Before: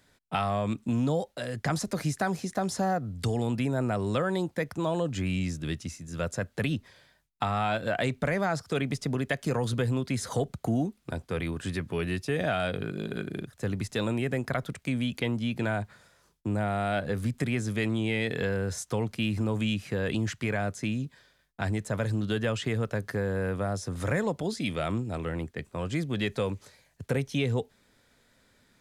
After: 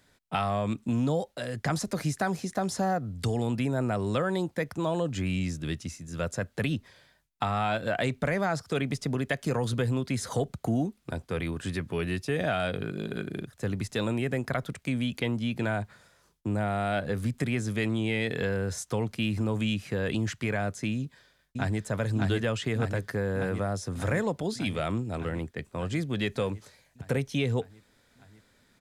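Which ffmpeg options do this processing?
-filter_complex "[0:a]asplit=2[a][b];[b]afade=t=in:st=20.95:d=0.01,afade=t=out:st=21.84:d=0.01,aecho=0:1:600|1200|1800|2400|3000|3600|4200|4800|5400|6000|6600|7200:0.749894|0.562421|0.421815|0.316362|0.237271|0.177953|0.133465|0.100099|0.0750741|0.0563056|0.0422292|0.0316719[c];[a][c]amix=inputs=2:normalize=0"

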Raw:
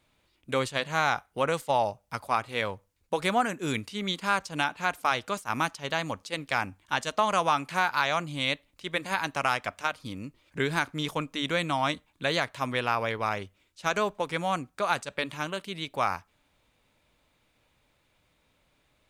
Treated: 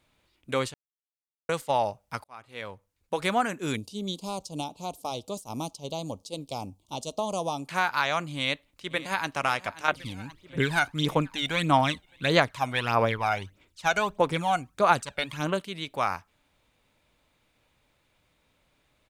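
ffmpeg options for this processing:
-filter_complex "[0:a]asplit=3[a][b][c];[a]afade=t=out:st=3.75:d=0.02[d];[b]asuperstop=centerf=1700:order=4:qfactor=0.54,afade=t=in:st=3.75:d=0.02,afade=t=out:st=7.67:d=0.02[e];[c]afade=t=in:st=7.67:d=0.02[f];[d][e][f]amix=inputs=3:normalize=0,asplit=2[g][h];[h]afade=t=in:st=8.37:d=0.01,afade=t=out:st=9.29:d=0.01,aecho=0:1:530|1060|1590|2120|2650|3180|3710|4240:0.141254|0.0988776|0.0692143|0.04845|0.033915|0.0237405|0.0166184|0.0116329[i];[g][i]amix=inputs=2:normalize=0,asettb=1/sr,asplit=3[j][k][l];[j]atrim=end=9.884[m];[k]atrim=start=9.88:end=15.61,asetpts=PTS-STARTPTS,afade=t=in:d=0.004:c=qsin,afade=t=out:st=5.726:d=0.004:c=qsin,aphaser=in_gain=1:out_gain=1:delay=1.4:decay=0.64:speed=1.6:type=sinusoidal[n];[l]atrim=start=15.606[o];[m][n]acrossfade=d=0.004:c1=hsin:c2=qsin[p];[p][o]acrossfade=d=0.004:c1=qsin:c2=hsin,asplit=4[q][r][s][t];[q]atrim=end=0.74,asetpts=PTS-STARTPTS,afade=t=out:st=0.736:d=0.004:c=hsin[u];[r]atrim=start=0.74:end=1.49,asetpts=PTS-STARTPTS,volume=0[v];[s]atrim=start=1.49:end=2.24,asetpts=PTS-STARTPTS,afade=t=in:d=0.004:c=hsin,afade=t=out:st=0.746:d=0.004:c=hsin[w];[t]atrim=start=2.24,asetpts=PTS-STARTPTS,afade=t=in:d=1[x];[u][v][w][x]concat=n=4:v=0:a=1"

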